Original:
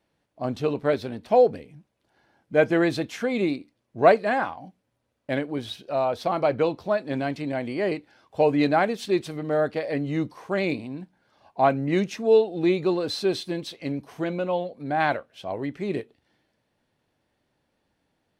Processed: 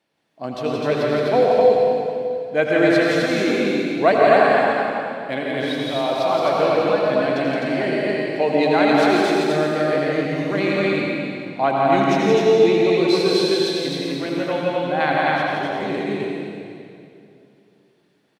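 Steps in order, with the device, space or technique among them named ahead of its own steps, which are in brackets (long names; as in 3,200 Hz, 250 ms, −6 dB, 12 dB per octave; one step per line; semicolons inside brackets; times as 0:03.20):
stadium PA (high-pass filter 140 Hz; parametric band 3,300 Hz +4.5 dB 2.3 octaves; loudspeakers that aren't time-aligned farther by 58 metres −4 dB, 88 metres −2 dB; convolution reverb RT60 2.6 s, pre-delay 75 ms, DRR −1 dB)
level −1 dB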